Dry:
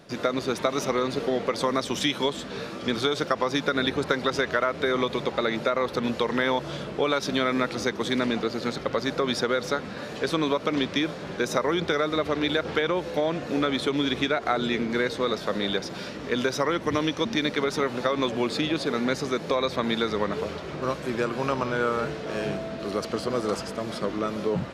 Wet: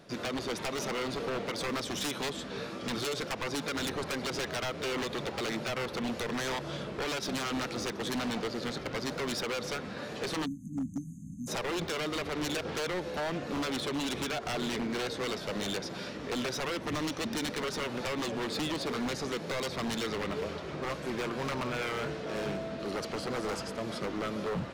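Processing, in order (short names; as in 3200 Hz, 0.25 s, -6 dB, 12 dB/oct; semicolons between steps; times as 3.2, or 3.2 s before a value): spectral delete 10.45–11.48, 300–6200 Hz; wavefolder -23.5 dBFS; gain -4 dB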